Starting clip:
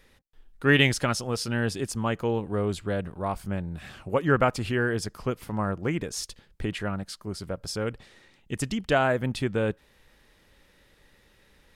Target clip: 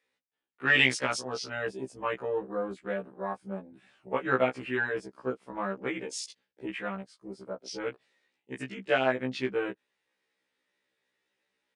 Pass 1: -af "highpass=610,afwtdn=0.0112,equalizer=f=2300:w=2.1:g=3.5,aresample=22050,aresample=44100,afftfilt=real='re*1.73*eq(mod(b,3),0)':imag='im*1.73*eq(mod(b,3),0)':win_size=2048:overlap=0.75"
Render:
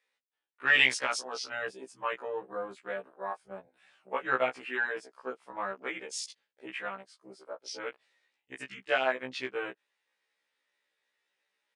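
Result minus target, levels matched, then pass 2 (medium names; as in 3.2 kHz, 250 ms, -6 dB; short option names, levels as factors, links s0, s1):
250 Hz band -9.5 dB
-af "highpass=290,afwtdn=0.0112,equalizer=f=2300:w=2.1:g=3.5,aresample=22050,aresample=44100,afftfilt=real='re*1.73*eq(mod(b,3),0)':imag='im*1.73*eq(mod(b,3),0)':win_size=2048:overlap=0.75"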